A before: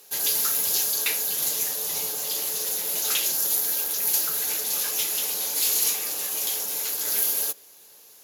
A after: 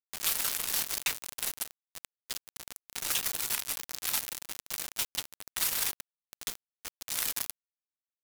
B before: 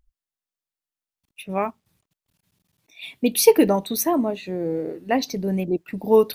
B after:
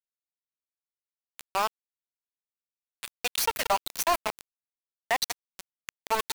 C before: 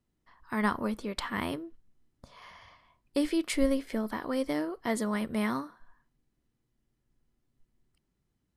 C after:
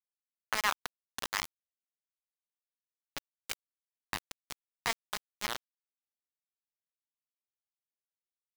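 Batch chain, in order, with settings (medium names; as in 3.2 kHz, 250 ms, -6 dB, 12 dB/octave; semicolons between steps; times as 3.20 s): self-modulated delay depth 0.13 ms; inverse Chebyshev high-pass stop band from 300 Hz, stop band 50 dB; on a send: delay 176 ms -9.5 dB; on the sum: level-controlled noise filter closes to 2.5 kHz, open at -24 dBFS; in parallel at +2 dB: compression 6:1, threshold -43 dBFS; on the sum: reverb removal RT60 1.3 s; small samples zeroed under -26 dBFS; peak limiter -19 dBFS; trim +4.5 dB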